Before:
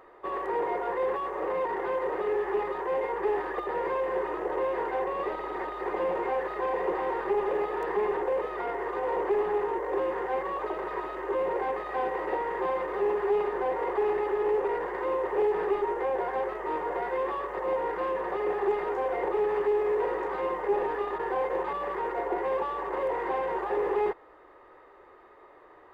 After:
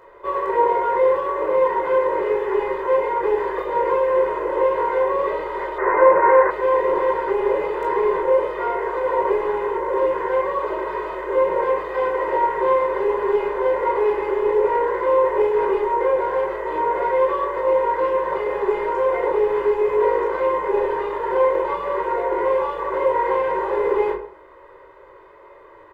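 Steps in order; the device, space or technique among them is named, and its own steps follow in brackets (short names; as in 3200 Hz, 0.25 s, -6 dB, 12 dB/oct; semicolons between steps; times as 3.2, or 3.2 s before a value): microphone above a desk (comb 2 ms, depth 77%; reverb RT60 0.45 s, pre-delay 16 ms, DRR -1.5 dB); 5.78–6.51 EQ curve 200 Hz 0 dB, 1800 Hz +11 dB, 3900 Hz -18 dB; gain +1.5 dB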